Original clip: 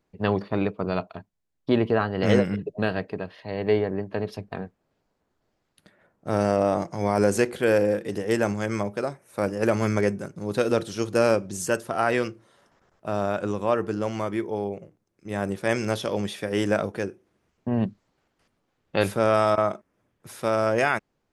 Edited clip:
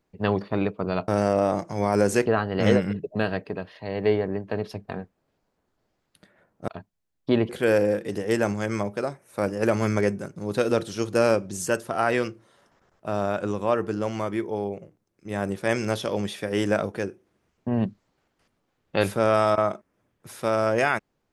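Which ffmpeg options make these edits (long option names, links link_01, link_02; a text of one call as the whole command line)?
ffmpeg -i in.wav -filter_complex "[0:a]asplit=5[link_01][link_02][link_03][link_04][link_05];[link_01]atrim=end=1.082[link_06];[link_02]atrim=start=6.308:end=7.492[link_07];[link_03]atrim=start=1.888:end=6.312[link_08];[link_04]atrim=start=1.078:end=1.892[link_09];[link_05]atrim=start=7.488[link_10];[link_06][link_07]acrossfade=duration=0.004:curve1=hsin:curve2=hsin[link_11];[link_11][link_08]acrossfade=duration=0.004:curve1=hsin:curve2=hsin[link_12];[link_12][link_09]acrossfade=duration=0.004:curve1=hsin:curve2=hsin[link_13];[link_13][link_10]acrossfade=duration=0.004:curve1=hsin:curve2=hsin" out.wav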